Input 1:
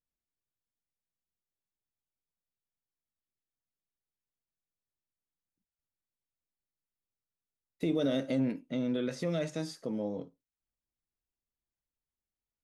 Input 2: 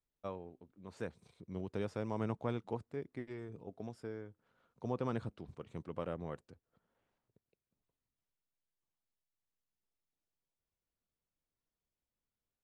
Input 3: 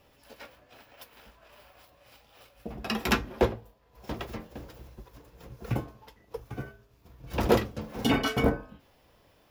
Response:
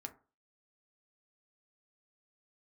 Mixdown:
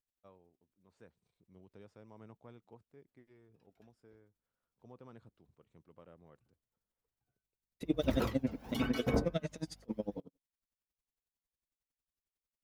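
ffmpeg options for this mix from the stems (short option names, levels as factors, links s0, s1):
-filter_complex "[0:a]aeval=exprs='val(0)*pow(10,-38*(0.5-0.5*cos(2*PI*11*n/s))/20)':c=same,volume=1.33,asplit=2[s0][s1];[1:a]volume=0.133[s2];[2:a]aphaser=in_gain=1:out_gain=1:delay=1.5:decay=0.51:speed=0.83:type=triangular,aeval=exprs='val(0)+0.00355*(sin(2*PI*50*n/s)+sin(2*PI*2*50*n/s)/2+sin(2*PI*3*50*n/s)/3+sin(2*PI*4*50*n/s)/4+sin(2*PI*5*50*n/s)/5)':c=same,adelay=700,volume=0.237[s3];[s1]apad=whole_len=449891[s4];[s3][s4]sidechaingate=range=0.01:threshold=0.00126:ratio=16:detection=peak[s5];[s0][s2][s5]amix=inputs=3:normalize=0"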